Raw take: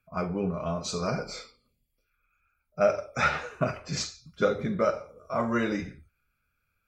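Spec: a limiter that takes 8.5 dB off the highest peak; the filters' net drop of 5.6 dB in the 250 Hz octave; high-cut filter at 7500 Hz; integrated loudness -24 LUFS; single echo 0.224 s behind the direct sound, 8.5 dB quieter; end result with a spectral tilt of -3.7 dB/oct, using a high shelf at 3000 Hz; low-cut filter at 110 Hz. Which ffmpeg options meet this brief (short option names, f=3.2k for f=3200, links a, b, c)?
-af "highpass=110,lowpass=7.5k,equalizer=f=250:t=o:g=-7.5,highshelf=f=3k:g=5,alimiter=limit=-20dB:level=0:latency=1,aecho=1:1:224:0.376,volume=8.5dB"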